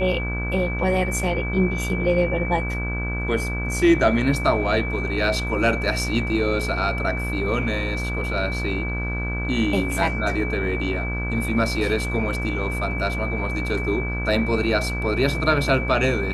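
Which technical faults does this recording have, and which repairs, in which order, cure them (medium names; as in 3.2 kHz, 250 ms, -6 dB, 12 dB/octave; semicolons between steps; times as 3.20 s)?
buzz 60 Hz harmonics 28 -27 dBFS
whine 2.3 kHz -29 dBFS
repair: band-stop 2.3 kHz, Q 30; de-hum 60 Hz, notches 28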